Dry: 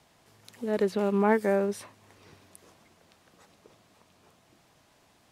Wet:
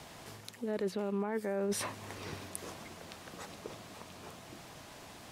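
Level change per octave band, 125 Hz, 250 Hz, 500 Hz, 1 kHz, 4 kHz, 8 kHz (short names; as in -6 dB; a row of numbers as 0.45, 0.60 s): -6.0, -8.0, -8.5, -9.5, +4.0, +6.0 dB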